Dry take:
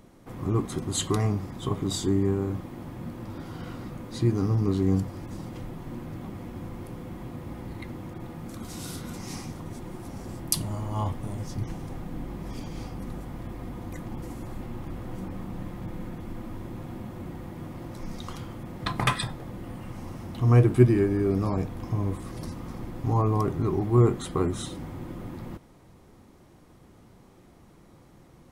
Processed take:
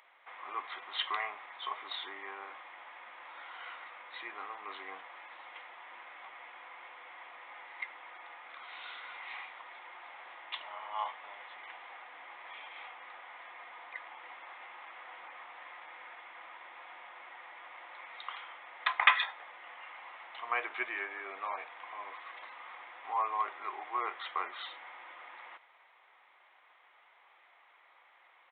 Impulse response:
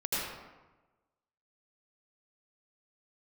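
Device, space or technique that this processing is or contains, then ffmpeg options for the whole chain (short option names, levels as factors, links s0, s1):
musical greeting card: -af "aresample=8000,aresample=44100,highpass=f=810:w=0.5412,highpass=f=810:w=1.3066,equalizer=f=2100:t=o:w=0.56:g=8"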